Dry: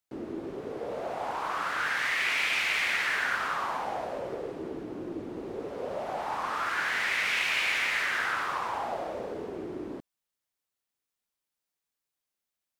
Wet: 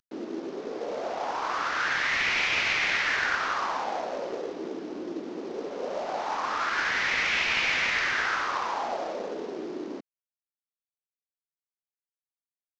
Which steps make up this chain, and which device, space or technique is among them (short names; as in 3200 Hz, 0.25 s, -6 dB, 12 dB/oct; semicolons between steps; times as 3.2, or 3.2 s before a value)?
early wireless headset (HPF 200 Hz 24 dB/oct; CVSD 32 kbps); gain +2.5 dB